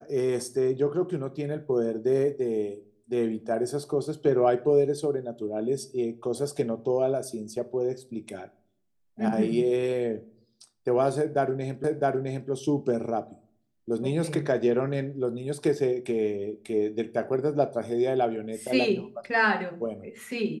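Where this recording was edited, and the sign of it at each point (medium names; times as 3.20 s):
11.84 s: repeat of the last 0.66 s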